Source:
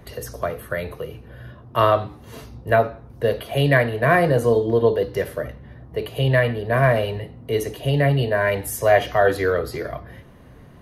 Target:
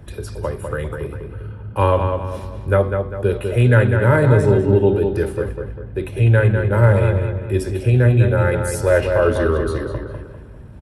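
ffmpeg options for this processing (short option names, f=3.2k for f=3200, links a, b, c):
-filter_complex "[0:a]equalizer=f=83:w=0.43:g=9.5,asetrate=38170,aresample=44100,atempo=1.15535,asplit=2[a][b];[b]adelay=199,lowpass=f=3.4k:p=1,volume=-5.5dB,asplit=2[c][d];[d]adelay=199,lowpass=f=3.4k:p=1,volume=0.42,asplit=2[e][f];[f]adelay=199,lowpass=f=3.4k:p=1,volume=0.42,asplit=2[g][h];[h]adelay=199,lowpass=f=3.4k:p=1,volume=0.42,asplit=2[i][j];[j]adelay=199,lowpass=f=3.4k:p=1,volume=0.42[k];[a][c][e][g][i][k]amix=inputs=6:normalize=0,volume=-1dB"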